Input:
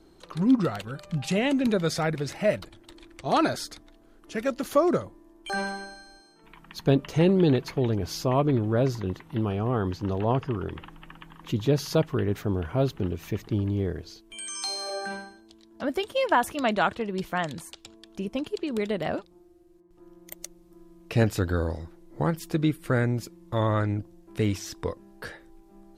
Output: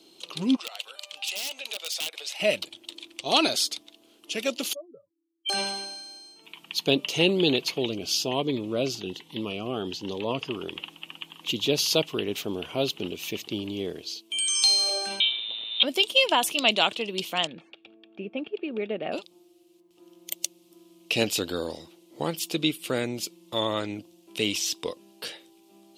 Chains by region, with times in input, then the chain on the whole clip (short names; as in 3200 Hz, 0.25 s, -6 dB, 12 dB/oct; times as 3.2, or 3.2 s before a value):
0.56–2.4 HPF 600 Hz 24 dB/oct + wrapped overs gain 22.5 dB + compressor 2.5:1, threshold -42 dBFS
4.73–5.49 spectral contrast raised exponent 3.6 + pre-emphasis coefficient 0.97 + comb 6.8 ms, depth 69%
7.86–10.39 high shelf 10000 Hz -6.5 dB + cascading phaser rising 1.2 Hz
15.2–15.83 switching spikes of -35.5 dBFS + sample leveller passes 2 + inverted band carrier 3900 Hz
17.47–19.12 Chebyshev low-pass 2000 Hz, order 3 + notch comb 1000 Hz
whole clip: HPF 260 Hz 12 dB/oct; resonant high shelf 2200 Hz +9 dB, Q 3